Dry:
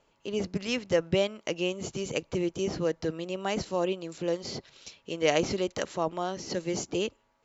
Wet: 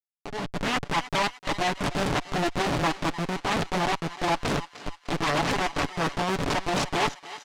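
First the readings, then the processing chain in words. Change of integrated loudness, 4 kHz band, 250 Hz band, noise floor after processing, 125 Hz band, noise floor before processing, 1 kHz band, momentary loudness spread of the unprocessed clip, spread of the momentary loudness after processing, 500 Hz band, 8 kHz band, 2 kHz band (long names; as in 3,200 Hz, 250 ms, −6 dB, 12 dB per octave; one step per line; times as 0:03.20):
+3.5 dB, +5.5 dB, +2.0 dB, −58 dBFS, +6.0 dB, −70 dBFS, +11.0 dB, 8 LU, 5 LU, −2.0 dB, can't be measured, +9.0 dB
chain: lower of the sound and its delayed copy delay 1 ms
comparator with hysteresis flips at −36.5 dBFS
low-pass filter 5,700 Hz 12 dB per octave
comb filter 7 ms, depth 47%
brickwall limiter −37 dBFS, peak gain reduction 10.5 dB
low-shelf EQ 170 Hz −8.5 dB
automatic gain control gain up to 10.5 dB
on a send: feedback echo with a high-pass in the loop 302 ms, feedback 51%, high-pass 770 Hz, level −13 dB
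on the sum: highs frequency-modulated by the lows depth 0.75 ms
level +8.5 dB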